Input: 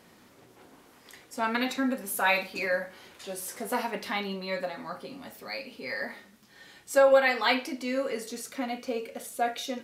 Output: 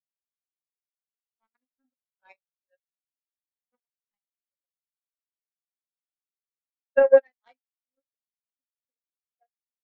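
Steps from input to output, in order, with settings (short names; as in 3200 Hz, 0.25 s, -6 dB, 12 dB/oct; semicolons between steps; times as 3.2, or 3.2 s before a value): power-law curve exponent 3; spectral expander 2.5:1; gain +5 dB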